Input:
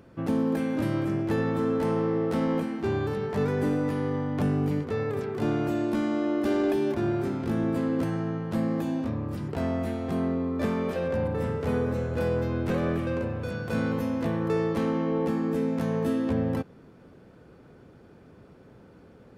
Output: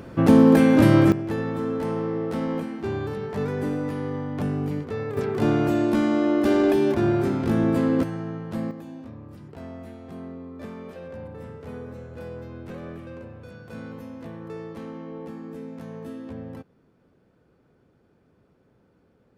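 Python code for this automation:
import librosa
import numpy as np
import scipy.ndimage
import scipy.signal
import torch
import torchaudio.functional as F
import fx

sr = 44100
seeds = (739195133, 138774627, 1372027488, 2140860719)

y = fx.gain(x, sr, db=fx.steps((0.0, 12.0), (1.12, -1.0), (5.17, 5.5), (8.03, -2.0), (8.71, -10.5)))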